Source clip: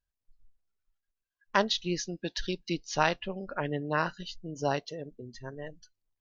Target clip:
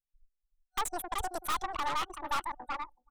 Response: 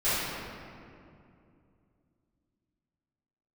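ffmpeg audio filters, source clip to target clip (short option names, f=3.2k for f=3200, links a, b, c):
-filter_complex "[0:a]asplit=2[a][b];[b]adelay=755,lowpass=f=4.8k:p=1,volume=-10dB,asplit=2[c][d];[d]adelay=755,lowpass=f=4.8k:p=1,volume=0.22,asplit=2[e][f];[f]adelay=755,lowpass=f=4.8k:p=1,volume=0.22[g];[c][e][g]amix=inputs=3:normalize=0[h];[a][h]amix=inputs=2:normalize=0,asetrate=88200,aresample=44100,anlmdn=1,acrossover=split=190|1500[i][j][k];[k]aeval=exprs='(mod(5.96*val(0)+1,2)-1)/5.96':c=same[l];[i][j][l]amix=inputs=3:normalize=0,superequalizer=9b=3.16:10b=3.16:14b=0.355:15b=0.631,aeval=exprs='(tanh(25.1*val(0)+0.7)-tanh(0.7))/25.1':c=same"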